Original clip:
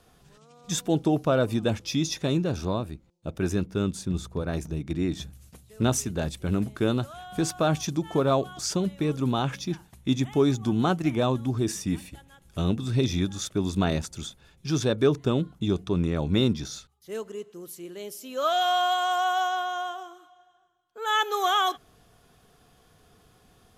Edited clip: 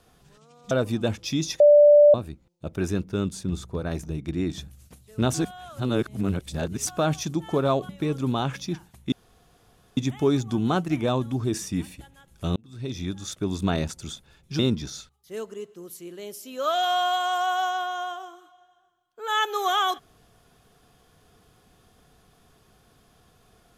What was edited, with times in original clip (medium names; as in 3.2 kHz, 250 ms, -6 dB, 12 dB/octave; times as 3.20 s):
0.71–1.33 s: delete
2.22–2.76 s: bleep 588 Hz -10 dBFS
5.96–7.49 s: reverse
8.51–8.88 s: delete
10.11 s: insert room tone 0.85 s
12.70–13.98 s: fade in equal-power
14.73–16.37 s: delete